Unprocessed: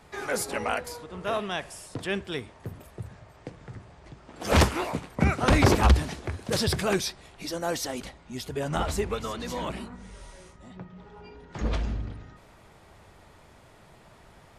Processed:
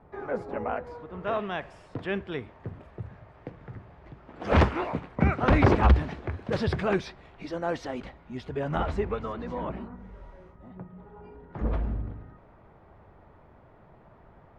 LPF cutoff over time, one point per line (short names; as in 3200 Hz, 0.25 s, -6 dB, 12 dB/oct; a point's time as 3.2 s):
0.68 s 1000 Hz
1.32 s 2200 Hz
8.82 s 2200 Hz
9.59 s 1300 Hz